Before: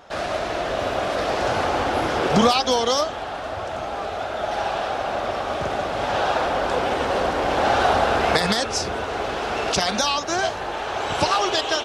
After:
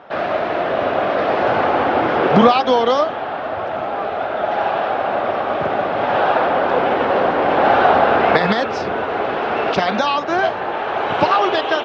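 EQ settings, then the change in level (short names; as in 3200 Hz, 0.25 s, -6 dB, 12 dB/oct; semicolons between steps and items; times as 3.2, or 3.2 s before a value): BPF 150–2700 Hz; air absorption 110 m; +6.5 dB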